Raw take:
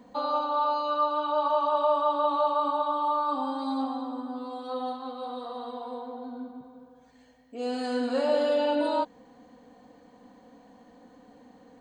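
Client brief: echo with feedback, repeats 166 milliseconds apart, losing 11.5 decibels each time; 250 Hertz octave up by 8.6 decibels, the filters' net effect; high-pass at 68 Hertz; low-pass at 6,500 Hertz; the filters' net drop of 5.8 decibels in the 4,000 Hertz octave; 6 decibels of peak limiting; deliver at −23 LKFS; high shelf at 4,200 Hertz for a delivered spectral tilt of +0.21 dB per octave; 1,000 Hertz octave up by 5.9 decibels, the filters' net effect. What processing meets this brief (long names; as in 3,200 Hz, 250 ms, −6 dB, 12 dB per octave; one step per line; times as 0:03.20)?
high-pass filter 68 Hz
low-pass filter 6,500 Hz
parametric band 250 Hz +9 dB
parametric band 1,000 Hz +7 dB
parametric band 4,000 Hz −5.5 dB
high-shelf EQ 4,200 Hz −3.5 dB
brickwall limiter −15 dBFS
repeating echo 166 ms, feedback 27%, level −11.5 dB
level +1.5 dB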